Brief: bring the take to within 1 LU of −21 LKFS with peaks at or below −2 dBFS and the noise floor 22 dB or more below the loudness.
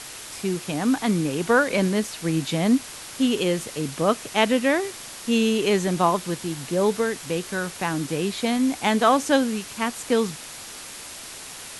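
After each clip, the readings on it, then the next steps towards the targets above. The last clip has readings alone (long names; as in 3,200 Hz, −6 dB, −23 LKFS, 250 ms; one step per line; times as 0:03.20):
background noise floor −39 dBFS; target noise floor −46 dBFS; integrated loudness −23.5 LKFS; sample peak −5.0 dBFS; target loudness −21.0 LKFS
→ noise reduction from a noise print 7 dB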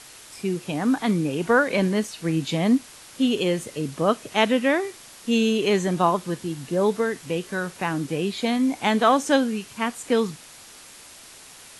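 background noise floor −46 dBFS; integrated loudness −23.5 LKFS; sample peak −5.0 dBFS; target loudness −21.0 LKFS
→ level +2.5 dB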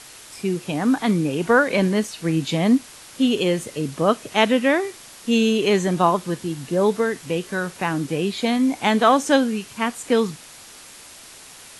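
integrated loudness −21.0 LKFS; sample peak −2.5 dBFS; background noise floor −43 dBFS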